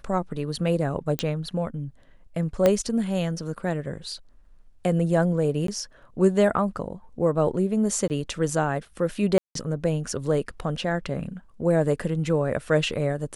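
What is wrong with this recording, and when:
0:01.19: click −9 dBFS
0:02.66: click −7 dBFS
0:05.67–0:05.68: drop-out 13 ms
0:08.08–0:08.10: drop-out 19 ms
0:09.38–0:09.55: drop-out 173 ms

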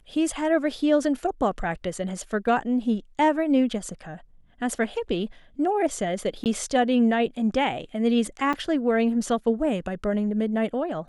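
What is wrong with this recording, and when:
0:06.44–0:06.46: drop-out 18 ms
0:08.53–0:08.54: drop-out 5.6 ms

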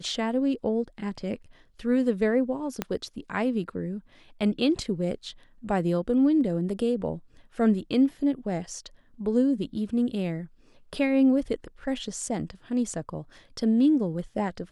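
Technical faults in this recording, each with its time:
0:02.82: click −13 dBFS

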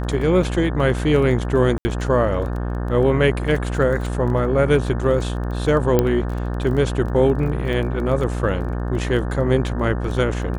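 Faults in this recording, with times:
mains buzz 60 Hz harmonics 30 −24 dBFS
surface crackle 16 per second −28 dBFS
0:01.78–0:01.85: drop-out 70 ms
0:05.99: click −4 dBFS
0:07.73: drop-out 4.9 ms

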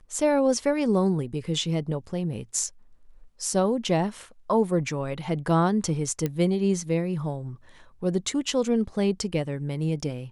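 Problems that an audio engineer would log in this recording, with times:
0:06.26: click −14 dBFS

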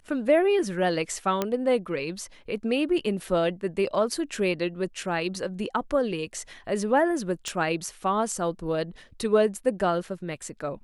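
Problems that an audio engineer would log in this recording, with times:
0:01.42: click −11 dBFS
0:07.48: click

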